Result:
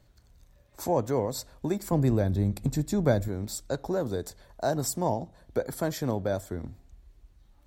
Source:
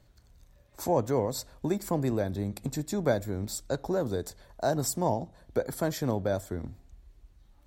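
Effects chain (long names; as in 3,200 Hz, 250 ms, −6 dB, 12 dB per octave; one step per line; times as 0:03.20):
0:01.92–0:03.28: low-shelf EQ 180 Hz +11 dB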